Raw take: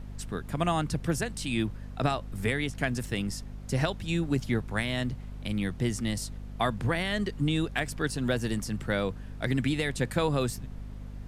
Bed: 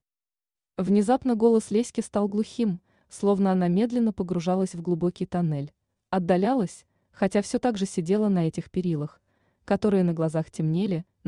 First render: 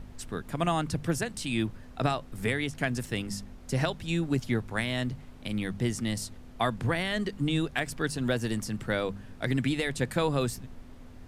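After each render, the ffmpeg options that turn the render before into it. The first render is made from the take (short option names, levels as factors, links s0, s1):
-af "bandreject=f=50:t=h:w=4,bandreject=f=100:t=h:w=4,bandreject=f=150:t=h:w=4,bandreject=f=200:t=h:w=4"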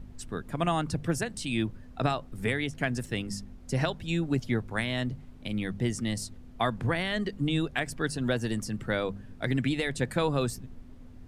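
-af "afftdn=nr=7:nf=-48"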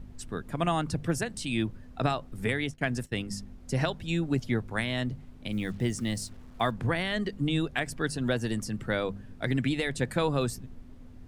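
-filter_complex "[0:a]asettb=1/sr,asplit=3[s0][s1][s2];[s0]atrim=end=2.484[s3];[s1]atrim=start=2.48:end=3.37,asetpts=PTS-STARTPTS,afade=t=in:d=0.004:c=qsin,afade=t=out:st=0.886:d=0.004:c=qsin,agate=range=0.0224:threshold=0.0178:ratio=3:release=100:detection=peak[s4];[s2]atrim=start=3.366[s5];[s3][s4]acrossfade=d=0.004:c1=hsin:c2=qsin[s6];[s6][s5]acrossfade=d=0.004:c1=qsin:c2=hsin,asettb=1/sr,asplit=3[s7][s8][s9];[s7]atrim=end=5.524[s10];[s8]atrim=start=5.52:end=6.71,asetpts=PTS-STARTPTS,afade=t=in:d=0.004:c=qsin,afade=t=out:st=1.186:d=0.004:c=qsin,acrusher=bits=8:mix=0:aa=0.5[s11];[s9]atrim=start=6.706[s12];[s10][s11]acrossfade=d=0.004:c1=hsin:c2=qsin[s13];[s13][s12]acrossfade=d=0.004:c1=qsin:c2=hsin"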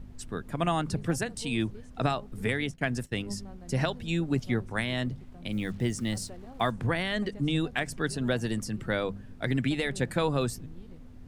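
-filter_complex "[1:a]volume=0.0531[s0];[0:a][s0]amix=inputs=2:normalize=0"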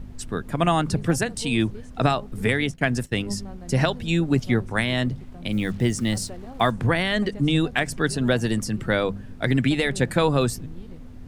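-af "volume=2.24"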